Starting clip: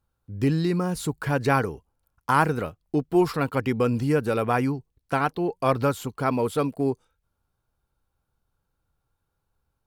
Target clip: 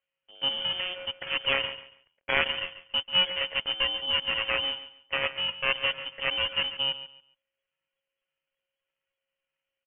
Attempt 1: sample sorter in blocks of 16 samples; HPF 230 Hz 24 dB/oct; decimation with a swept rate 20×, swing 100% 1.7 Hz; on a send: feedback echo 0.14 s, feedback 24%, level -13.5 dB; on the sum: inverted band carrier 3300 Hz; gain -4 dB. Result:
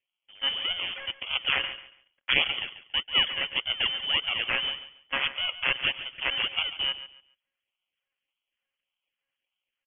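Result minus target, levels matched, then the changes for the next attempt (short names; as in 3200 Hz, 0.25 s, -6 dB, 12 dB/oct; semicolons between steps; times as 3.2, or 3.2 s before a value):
decimation with a swept rate: distortion +9 dB
change: decimation with a swept rate 5×, swing 100% 1.7 Hz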